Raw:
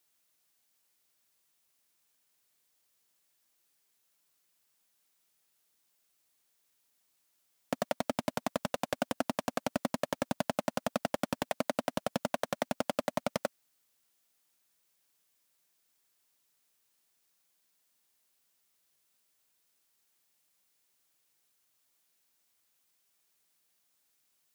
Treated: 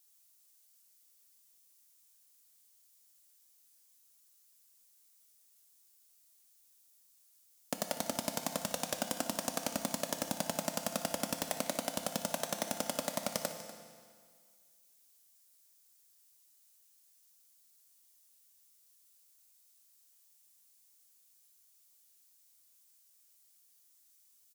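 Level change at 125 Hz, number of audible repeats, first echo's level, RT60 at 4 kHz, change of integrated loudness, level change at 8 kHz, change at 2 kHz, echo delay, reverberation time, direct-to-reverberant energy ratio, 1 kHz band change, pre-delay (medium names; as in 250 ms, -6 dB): -3.5 dB, 1, -15.5 dB, 1.8 s, -1.5 dB, +8.0 dB, -3.0 dB, 244 ms, 1.9 s, 5.5 dB, -4.0 dB, 6 ms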